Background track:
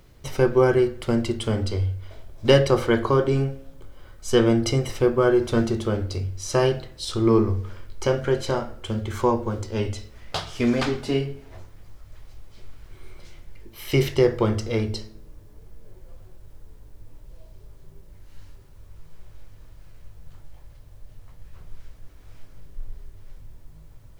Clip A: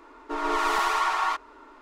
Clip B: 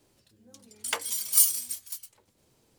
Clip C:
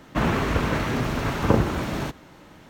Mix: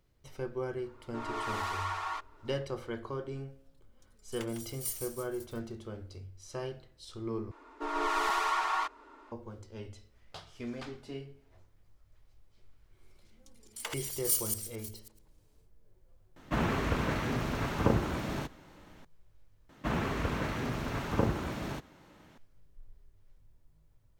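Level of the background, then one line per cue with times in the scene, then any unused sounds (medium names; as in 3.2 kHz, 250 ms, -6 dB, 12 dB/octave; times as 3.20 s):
background track -18.5 dB
0.84 s: add A -11 dB
3.48 s: add B -17 dB + bit-crushed delay 153 ms, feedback 35%, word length 7-bit, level -8 dB
7.51 s: replace with A -5.5 dB
12.92 s: add B -10 dB, fades 0.10 s + chunks repeated in reverse 108 ms, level -3 dB
16.36 s: add C -7.5 dB
19.69 s: replace with C -9.5 dB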